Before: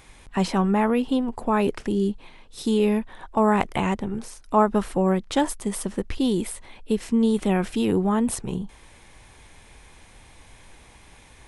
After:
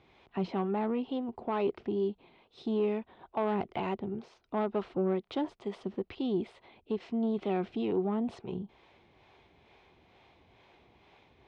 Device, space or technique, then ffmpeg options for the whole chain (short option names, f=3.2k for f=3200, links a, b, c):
guitar amplifier with harmonic tremolo: -filter_complex "[0:a]acrossover=split=410[a][b];[a]aeval=exprs='val(0)*(1-0.5/2+0.5/2*cos(2*PI*2.2*n/s))':c=same[c];[b]aeval=exprs='val(0)*(1-0.5/2-0.5/2*cos(2*PI*2.2*n/s))':c=same[d];[c][d]amix=inputs=2:normalize=0,asoftclip=type=tanh:threshold=-18dB,highpass=94,equalizer=f=380:t=q:w=4:g=8,equalizer=f=700:t=q:w=4:g=6,equalizer=f=1.7k:t=q:w=4:g=-6,lowpass=f=4k:w=0.5412,lowpass=f=4k:w=1.3066,volume=-7.5dB"